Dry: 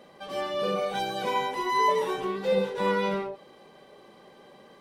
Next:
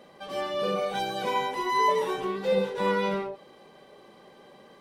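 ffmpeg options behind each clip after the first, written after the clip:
-af anull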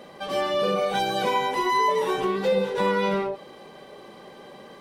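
-af "acompressor=threshold=-29dB:ratio=2.5,volume=7.5dB"

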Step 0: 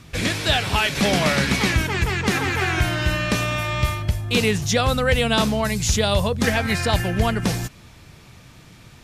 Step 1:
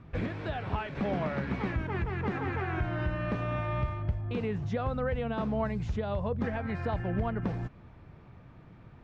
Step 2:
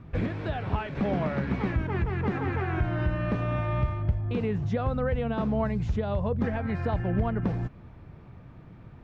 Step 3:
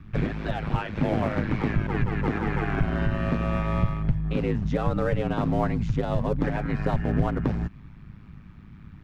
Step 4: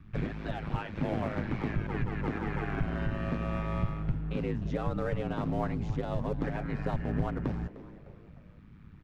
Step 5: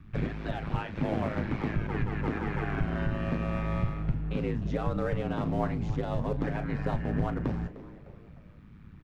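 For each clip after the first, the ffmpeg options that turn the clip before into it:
-af "alimiter=limit=-14.5dB:level=0:latency=1:release=281,lowpass=1.3k,volume=-5dB"
-af "lowshelf=f=500:g=4,volume=1dB"
-filter_complex "[0:a]aeval=exprs='val(0)*sin(2*PI*53*n/s)':c=same,acrossover=split=310|1000[a][b][c];[b]aeval=exprs='sgn(val(0))*max(abs(val(0))-0.00335,0)':c=same[d];[a][d][c]amix=inputs=3:normalize=0,volume=6dB"
-filter_complex "[0:a]asplit=4[a][b][c][d];[b]adelay=303,afreqshift=140,volume=-17.5dB[e];[c]adelay=606,afreqshift=280,volume=-25.7dB[f];[d]adelay=909,afreqshift=420,volume=-33.9dB[g];[a][e][f][g]amix=inputs=4:normalize=0,volume=-7dB"
-filter_complex "[0:a]asplit=2[a][b];[b]adelay=36,volume=-12.5dB[c];[a][c]amix=inputs=2:normalize=0,volume=1.5dB"

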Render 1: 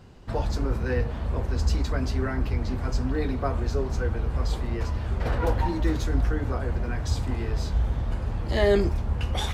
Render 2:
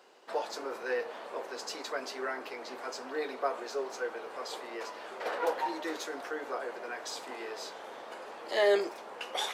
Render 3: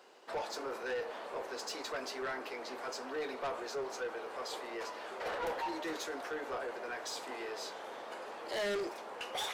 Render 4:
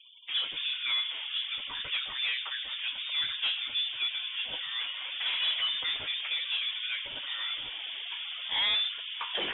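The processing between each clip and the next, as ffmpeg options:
-af "highpass=f=420:w=0.5412,highpass=f=420:w=1.3066,volume=-1.5dB"
-af "asoftclip=type=tanh:threshold=-32.5dB"
-af "lowpass=f=3.3k:t=q:w=0.5098,lowpass=f=3.3k:t=q:w=0.6013,lowpass=f=3.3k:t=q:w=0.9,lowpass=f=3.3k:t=q:w=2.563,afreqshift=-3900,afftfilt=real='re*gte(hypot(re,im),0.00224)':imag='im*gte(hypot(re,im),0.00224)':win_size=1024:overlap=0.75,volume=7dB"

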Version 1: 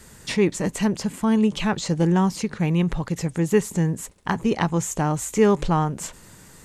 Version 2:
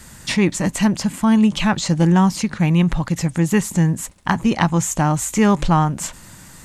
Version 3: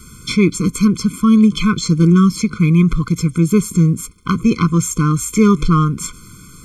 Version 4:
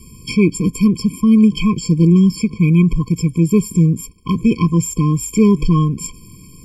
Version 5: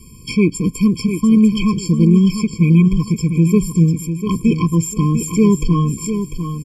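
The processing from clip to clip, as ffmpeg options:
-af "equalizer=f=430:t=o:w=0.47:g=-10.5,volume=6dB"
-af "afftfilt=real='re*eq(mod(floor(b*sr/1024/510),2),0)':imag='im*eq(mod(floor(b*sr/1024/510),2),0)':win_size=1024:overlap=0.75,volume=4dB"
-af "afftfilt=real='re*eq(mod(floor(b*sr/1024/1100),2),0)':imag='im*eq(mod(floor(b*sr/1024/1100),2),0)':win_size=1024:overlap=0.75"
-af "aecho=1:1:697|1394|2091:0.376|0.109|0.0316,volume=-1dB"

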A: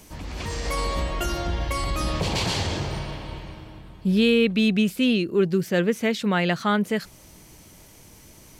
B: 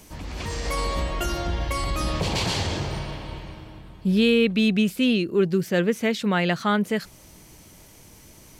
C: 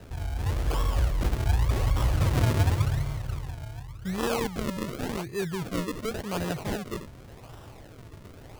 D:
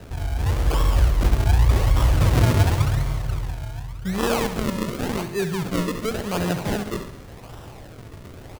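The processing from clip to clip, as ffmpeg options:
-af anull
-af "crystalizer=i=3:c=0,lowshelf=f=160:t=q:w=3:g=10.5,acrusher=samples=39:mix=1:aa=0.000001:lfo=1:lforange=39:lforate=0.89,volume=-8.5dB"
-af "aecho=1:1:68|136|204|272|340|408|476:0.299|0.173|0.1|0.0582|0.0338|0.0196|0.0114,volume=5.5dB"

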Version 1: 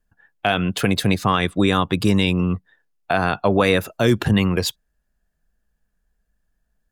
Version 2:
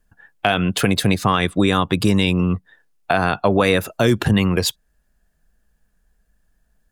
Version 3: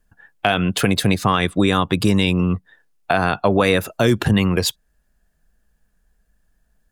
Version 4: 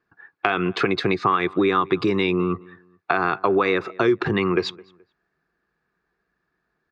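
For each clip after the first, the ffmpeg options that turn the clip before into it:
-af "equalizer=f=9.3k:w=1.5:g=2.5,acompressor=threshold=-30dB:ratio=1.5,volume=7dB"
-af anull
-filter_complex "[0:a]highpass=180,equalizer=f=220:t=q:w=4:g=-8,equalizer=f=370:t=q:w=4:g=10,equalizer=f=590:t=q:w=4:g=-8,equalizer=f=1.2k:t=q:w=4:g=9,equalizer=f=2.2k:t=q:w=4:g=4,equalizer=f=3.1k:t=q:w=4:g=-9,lowpass=f=4.2k:w=0.5412,lowpass=f=4.2k:w=1.3066,acompressor=threshold=-17dB:ratio=3,asplit=2[a][b];[b]adelay=213,lowpass=f=2.4k:p=1,volume=-23dB,asplit=2[c][d];[d]adelay=213,lowpass=f=2.4k:p=1,volume=0.3[e];[a][c][e]amix=inputs=3:normalize=0"

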